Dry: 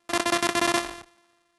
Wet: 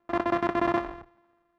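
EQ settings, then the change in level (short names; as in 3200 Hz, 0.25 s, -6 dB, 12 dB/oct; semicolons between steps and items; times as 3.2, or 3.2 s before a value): LPF 1300 Hz 12 dB/oct; low shelf 120 Hz +6.5 dB; notches 60/120 Hz; 0.0 dB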